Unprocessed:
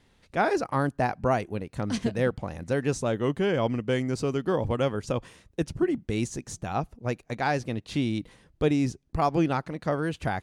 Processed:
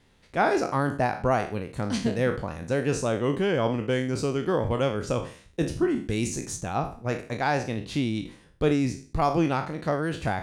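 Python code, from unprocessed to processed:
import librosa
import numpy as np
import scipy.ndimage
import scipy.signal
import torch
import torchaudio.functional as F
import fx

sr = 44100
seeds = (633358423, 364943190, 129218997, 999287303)

y = fx.spec_trails(x, sr, decay_s=0.42)
y = fx.high_shelf(y, sr, hz=5900.0, db=6.0, at=(5.95, 6.58))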